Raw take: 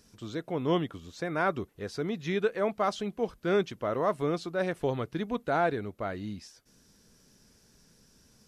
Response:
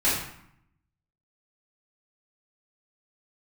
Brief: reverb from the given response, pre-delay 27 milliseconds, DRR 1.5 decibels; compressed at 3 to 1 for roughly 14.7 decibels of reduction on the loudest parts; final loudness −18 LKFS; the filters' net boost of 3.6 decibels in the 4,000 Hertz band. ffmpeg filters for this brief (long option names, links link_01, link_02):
-filter_complex "[0:a]equalizer=frequency=4000:width_type=o:gain=4.5,acompressor=threshold=-42dB:ratio=3,asplit=2[link_01][link_02];[1:a]atrim=start_sample=2205,adelay=27[link_03];[link_02][link_03]afir=irnorm=-1:irlink=0,volume=-15.5dB[link_04];[link_01][link_04]amix=inputs=2:normalize=0,volume=22.5dB"